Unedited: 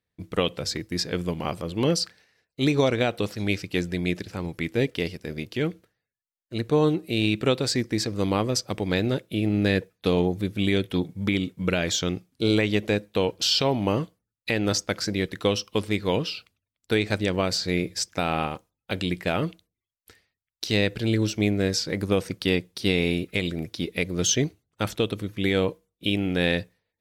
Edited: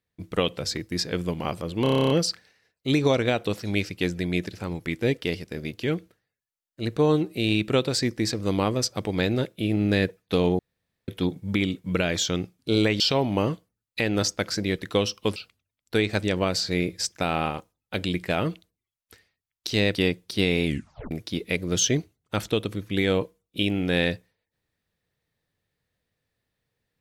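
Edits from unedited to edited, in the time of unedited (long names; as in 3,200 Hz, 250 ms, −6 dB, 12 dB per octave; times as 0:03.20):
0:01.83: stutter 0.03 s, 10 plays
0:10.32–0:10.81: fill with room tone
0:12.73–0:13.50: remove
0:15.86–0:16.33: remove
0:20.92–0:22.42: remove
0:23.12: tape stop 0.46 s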